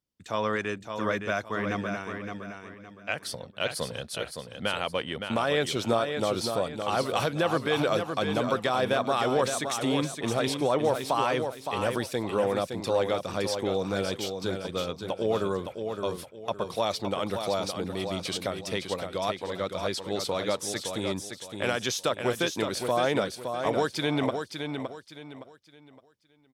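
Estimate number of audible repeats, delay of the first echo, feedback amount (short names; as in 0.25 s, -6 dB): 3, 0.565 s, 31%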